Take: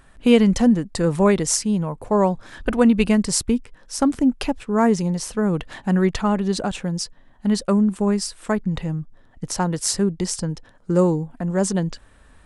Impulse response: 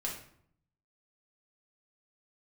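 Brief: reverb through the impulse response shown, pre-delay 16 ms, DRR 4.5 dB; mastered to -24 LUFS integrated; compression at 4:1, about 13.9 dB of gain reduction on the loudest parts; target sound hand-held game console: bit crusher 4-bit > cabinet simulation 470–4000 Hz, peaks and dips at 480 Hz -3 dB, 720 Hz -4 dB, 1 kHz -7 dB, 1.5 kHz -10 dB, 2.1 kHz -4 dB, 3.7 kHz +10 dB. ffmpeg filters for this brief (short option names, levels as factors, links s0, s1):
-filter_complex "[0:a]acompressor=threshold=0.0398:ratio=4,asplit=2[s0][s1];[1:a]atrim=start_sample=2205,adelay=16[s2];[s1][s2]afir=irnorm=-1:irlink=0,volume=0.473[s3];[s0][s3]amix=inputs=2:normalize=0,acrusher=bits=3:mix=0:aa=0.000001,highpass=470,equalizer=f=480:t=q:w=4:g=-3,equalizer=f=720:t=q:w=4:g=-4,equalizer=f=1000:t=q:w=4:g=-7,equalizer=f=1500:t=q:w=4:g=-10,equalizer=f=2100:t=q:w=4:g=-4,equalizer=f=3700:t=q:w=4:g=10,lowpass=f=4000:w=0.5412,lowpass=f=4000:w=1.3066,volume=3.16"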